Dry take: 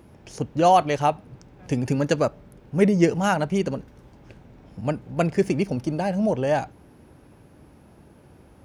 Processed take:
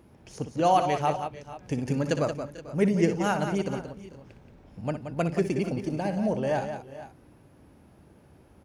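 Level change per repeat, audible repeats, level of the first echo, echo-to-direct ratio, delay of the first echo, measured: no regular repeats, 3, -10.5 dB, -6.0 dB, 60 ms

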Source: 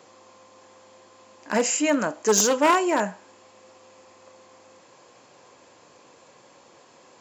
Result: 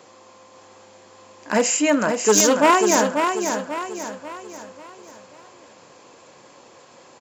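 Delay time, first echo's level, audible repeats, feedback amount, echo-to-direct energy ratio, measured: 540 ms, -6.0 dB, 4, 43%, -5.0 dB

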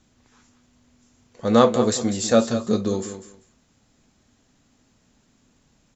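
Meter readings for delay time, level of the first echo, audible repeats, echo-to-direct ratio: 196 ms, -11.5 dB, 2, -11.5 dB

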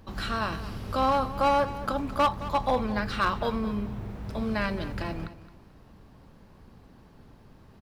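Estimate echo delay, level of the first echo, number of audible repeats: 218 ms, -15.0 dB, 2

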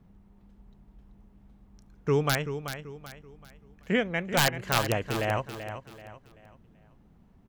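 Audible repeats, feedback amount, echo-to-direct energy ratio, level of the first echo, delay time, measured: 3, 36%, -9.5 dB, -10.0 dB, 384 ms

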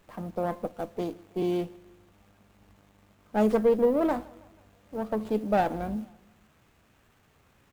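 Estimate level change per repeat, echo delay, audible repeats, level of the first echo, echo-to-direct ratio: -5.5 dB, 161 ms, 2, -24.0 dB, -22.5 dB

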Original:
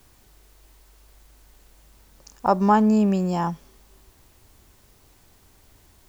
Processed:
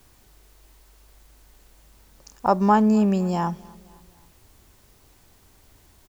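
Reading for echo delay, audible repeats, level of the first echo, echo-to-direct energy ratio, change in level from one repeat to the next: 259 ms, 2, -24.0 dB, -23.0 dB, -6.0 dB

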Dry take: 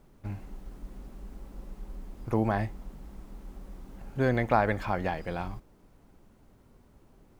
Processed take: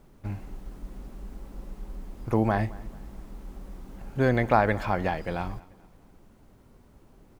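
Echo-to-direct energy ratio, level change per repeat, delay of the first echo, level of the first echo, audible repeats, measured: -21.5 dB, -8.0 dB, 217 ms, -22.0 dB, 2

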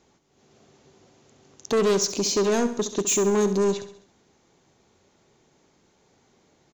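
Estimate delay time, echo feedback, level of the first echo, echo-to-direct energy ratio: 67 ms, 49%, -12.0 dB, -11.0 dB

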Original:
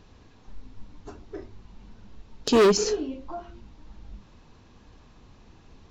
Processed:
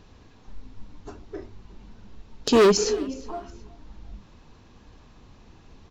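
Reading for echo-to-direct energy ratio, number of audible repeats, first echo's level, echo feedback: -21.5 dB, 2, -22.0 dB, 33%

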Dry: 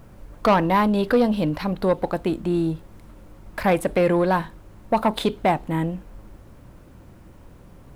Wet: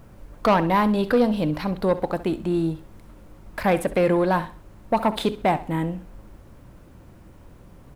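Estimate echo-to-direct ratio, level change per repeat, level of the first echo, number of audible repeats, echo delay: -15.0 dB, -10.5 dB, -15.5 dB, 2, 66 ms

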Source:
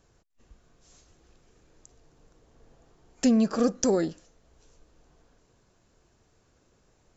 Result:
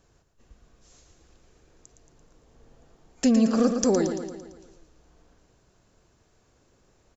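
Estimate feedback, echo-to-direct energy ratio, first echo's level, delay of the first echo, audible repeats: 56%, -6.0 dB, -7.5 dB, 113 ms, 6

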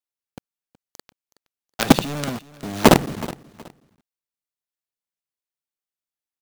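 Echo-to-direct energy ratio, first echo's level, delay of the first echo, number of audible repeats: -18.5 dB, -19.0 dB, 371 ms, 2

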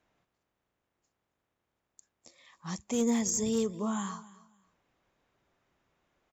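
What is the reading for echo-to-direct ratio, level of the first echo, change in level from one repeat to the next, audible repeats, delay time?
-19.5 dB, -19.5 dB, -13.0 dB, 2, 273 ms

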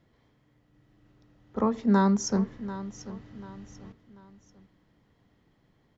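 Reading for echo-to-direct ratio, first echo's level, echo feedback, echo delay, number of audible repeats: -14.0 dB, -14.5 dB, 36%, 740 ms, 3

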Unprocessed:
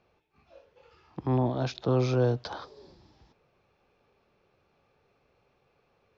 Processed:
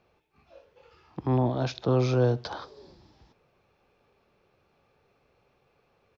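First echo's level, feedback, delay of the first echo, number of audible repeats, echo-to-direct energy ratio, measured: -23.0 dB, 35%, 64 ms, 2, -22.5 dB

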